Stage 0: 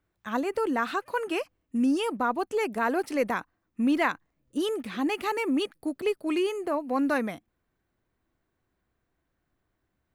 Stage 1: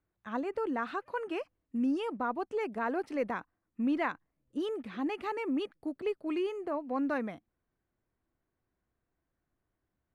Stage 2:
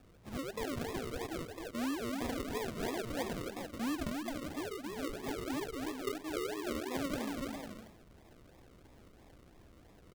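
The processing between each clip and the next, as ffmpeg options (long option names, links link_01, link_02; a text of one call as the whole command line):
ffmpeg -i in.wav -af "aemphasis=mode=reproduction:type=75fm,volume=-6.5dB" out.wav
ffmpeg -i in.wav -af "aeval=exprs='val(0)+0.5*0.00447*sgn(val(0))':channel_layout=same,aecho=1:1:270|432|529.2|587.5|622.5:0.631|0.398|0.251|0.158|0.1,acrusher=samples=42:mix=1:aa=0.000001:lfo=1:lforange=25.2:lforate=3,volume=-7dB" out.wav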